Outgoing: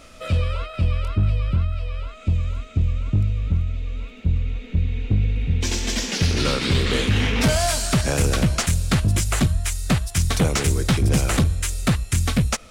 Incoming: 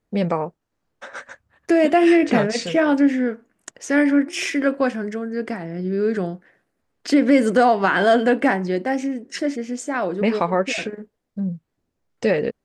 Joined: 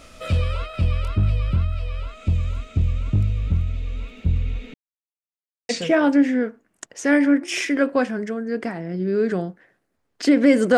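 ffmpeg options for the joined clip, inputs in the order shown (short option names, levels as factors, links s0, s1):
-filter_complex "[0:a]apad=whole_dur=10.77,atrim=end=10.77,asplit=2[s0][s1];[s0]atrim=end=4.74,asetpts=PTS-STARTPTS,afade=t=out:st=4.736:d=0.004:c=hsin[s2];[s1]atrim=start=4.74:end=5.69,asetpts=PTS-STARTPTS,volume=0[s3];[1:a]atrim=start=2.54:end=7.62,asetpts=PTS-STARTPTS,afade=t=in:d=0.004:c=hsin[s4];[s2][s3][s4]concat=n=3:v=0:a=1"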